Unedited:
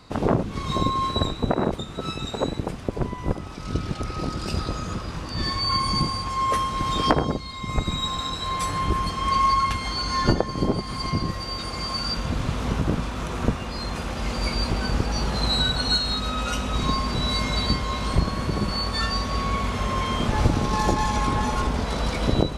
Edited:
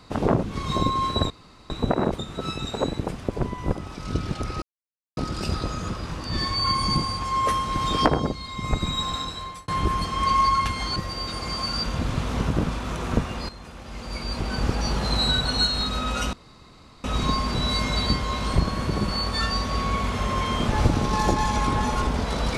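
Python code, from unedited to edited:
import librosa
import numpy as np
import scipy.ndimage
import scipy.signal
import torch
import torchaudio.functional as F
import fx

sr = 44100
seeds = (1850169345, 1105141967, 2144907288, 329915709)

y = fx.edit(x, sr, fx.insert_room_tone(at_s=1.3, length_s=0.4),
    fx.insert_silence(at_s=4.22, length_s=0.55),
    fx.fade_out_span(start_s=8.2, length_s=0.53),
    fx.cut(start_s=10.01, length_s=1.26),
    fx.fade_in_from(start_s=13.8, length_s=1.22, curve='qua', floor_db=-12.5),
    fx.insert_room_tone(at_s=16.64, length_s=0.71), tone=tone)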